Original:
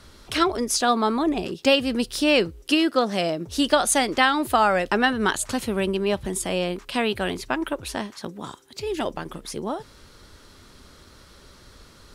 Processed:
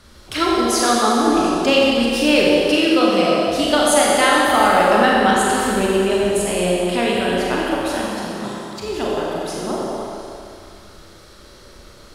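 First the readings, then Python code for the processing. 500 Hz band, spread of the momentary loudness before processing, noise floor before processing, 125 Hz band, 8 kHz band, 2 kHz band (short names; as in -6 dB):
+7.5 dB, 12 LU, -51 dBFS, +5.0 dB, +5.0 dB, +5.5 dB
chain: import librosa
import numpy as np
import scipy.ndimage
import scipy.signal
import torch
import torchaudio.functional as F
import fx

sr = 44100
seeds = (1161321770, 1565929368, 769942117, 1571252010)

y = fx.echo_stepped(x, sr, ms=105, hz=410.0, octaves=0.7, feedback_pct=70, wet_db=-1.0)
y = fx.rev_schroeder(y, sr, rt60_s=2.3, comb_ms=30, drr_db=-3.5)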